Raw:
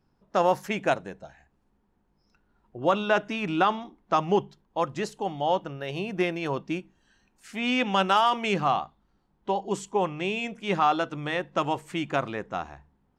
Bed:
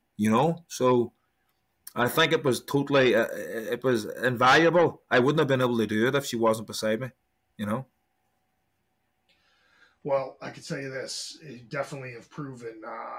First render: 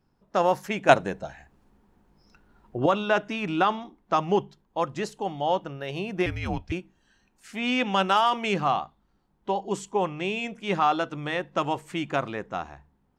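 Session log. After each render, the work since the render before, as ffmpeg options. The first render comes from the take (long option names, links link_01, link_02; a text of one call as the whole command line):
ffmpeg -i in.wav -filter_complex "[0:a]asettb=1/sr,asplit=3[link_01][link_02][link_03];[link_01]atrim=end=6.264[link_04];[link_02]atrim=start=6.26:end=6.72,asetpts=PTS-STARTPTS,afade=type=in:duration=0.004:curve=qsin,afade=type=out:start_time=0.456:duration=0.004:curve=qsin,afreqshift=-230[link_05];[link_03]atrim=start=6.716[link_06];[link_04][link_05]acrossfade=duration=0.004:curve1=hsin:curve2=qsin[link_07];[link_07][link_06]acrossfade=duration=0.004:curve1=qsin:curve2=hsin,asplit=3[link_08][link_09][link_10];[link_08]atrim=end=0.892[link_11];[link_09]atrim=start=0.888:end=2.862,asetpts=PTS-STARTPTS,volume=8.5dB[link_12];[link_10]atrim=start=2.858[link_13];[link_11][link_12]acrossfade=duration=0.004:curve1=hsin:curve2=hsin[link_14];[link_14][link_13]acrossfade=duration=0.004:curve1=hsin:curve2=hsin" out.wav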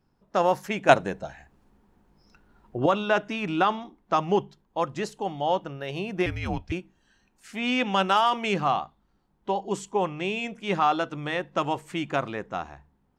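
ffmpeg -i in.wav -af anull out.wav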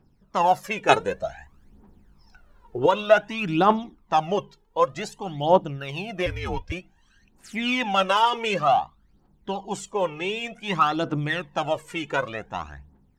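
ffmpeg -i in.wav -af "aphaser=in_gain=1:out_gain=1:delay=2.4:decay=0.71:speed=0.54:type=triangular" out.wav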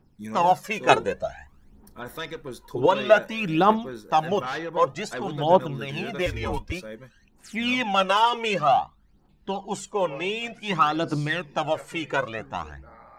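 ffmpeg -i in.wav -i bed.wav -filter_complex "[1:a]volume=-12.5dB[link_01];[0:a][link_01]amix=inputs=2:normalize=0" out.wav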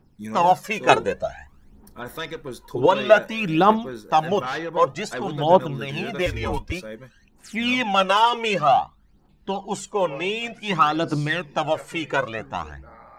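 ffmpeg -i in.wav -af "volume=2.5dB,alimiter=limit=-1dB:level=0:latency=1" out.wav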